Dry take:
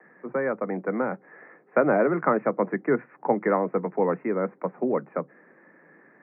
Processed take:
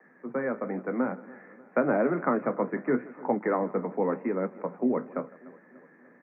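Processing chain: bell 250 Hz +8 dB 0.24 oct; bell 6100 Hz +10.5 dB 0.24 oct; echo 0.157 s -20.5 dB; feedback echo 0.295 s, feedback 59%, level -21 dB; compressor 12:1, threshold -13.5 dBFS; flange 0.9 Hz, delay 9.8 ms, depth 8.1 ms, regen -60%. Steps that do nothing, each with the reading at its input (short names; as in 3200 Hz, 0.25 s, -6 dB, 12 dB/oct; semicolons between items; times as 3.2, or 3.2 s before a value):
bell 6100 Hz: input band ends at 2200 Hz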